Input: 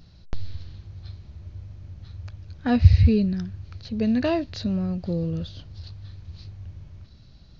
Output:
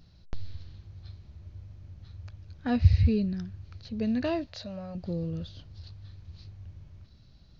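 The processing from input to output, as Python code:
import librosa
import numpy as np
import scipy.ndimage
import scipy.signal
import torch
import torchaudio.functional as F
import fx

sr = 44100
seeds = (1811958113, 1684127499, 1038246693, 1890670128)

y = fx.low_shelf_res(x, sr, hz=450.0, db=-8.0, q=3.0, at=(4.47, 4.95))
y = y * 10.0 ** (-6.0 / 20.0)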